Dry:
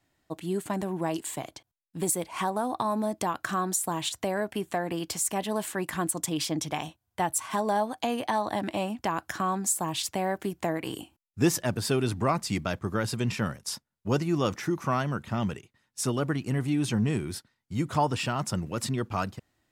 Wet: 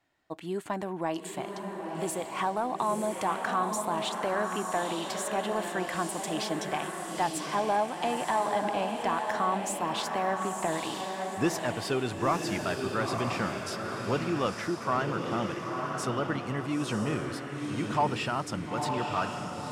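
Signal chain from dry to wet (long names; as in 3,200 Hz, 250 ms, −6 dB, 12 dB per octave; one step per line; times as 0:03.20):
feedback delay with all-pass diffusion 947 ms, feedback 43%, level −4 dB
mid-hump overdrive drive 11 dB, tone 2,100 Hz, clips at −9.5 dBFS
level −3.5 dB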